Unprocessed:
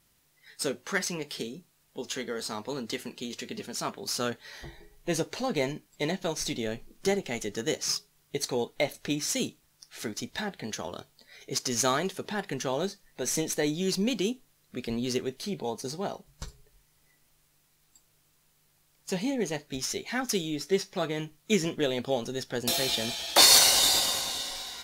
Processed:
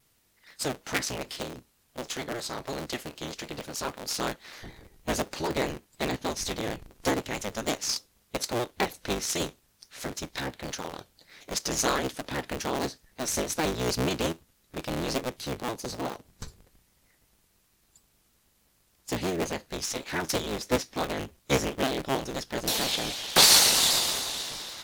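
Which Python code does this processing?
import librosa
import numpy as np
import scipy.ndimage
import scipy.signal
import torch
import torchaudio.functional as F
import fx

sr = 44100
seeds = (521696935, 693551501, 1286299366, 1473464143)

y = fx.cycle_switch(x, sr, every=3, mode='inverted')
y = fx.vibrato_shape(y, sr, shape='saw_down', rate_hz=6.4, depth_cents=100.0)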